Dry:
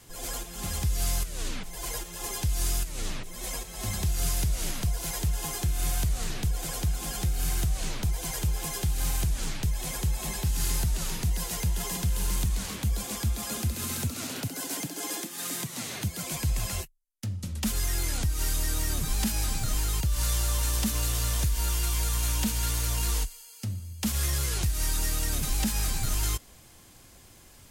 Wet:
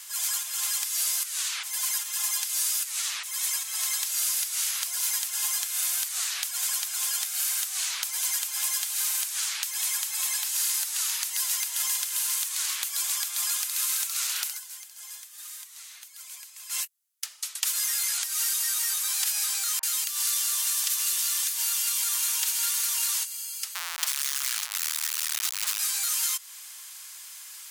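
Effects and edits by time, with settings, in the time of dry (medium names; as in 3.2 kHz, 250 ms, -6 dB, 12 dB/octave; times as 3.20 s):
14.47–16.82 s: dip -20 dB, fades 0.13 s
19.79–22.02 s: bands offset in time lows, highs 40 ms, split 1.1 kHz
23.75–25.79 s: Schmitt trigger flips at -37 dBFS
whole clip: inverse Chebyshev high-pass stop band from 180 Hz, stop band 80 dB; treble shelf 3.1 kHz +8.5 dB; compression 2.5:1, threshold -33 dBFS; trim +6 dB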